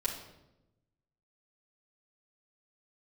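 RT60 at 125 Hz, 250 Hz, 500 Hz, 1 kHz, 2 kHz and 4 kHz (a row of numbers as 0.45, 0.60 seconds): 1.5, 1.3, 1.1, 0.80, 0.70, 0.65 seconds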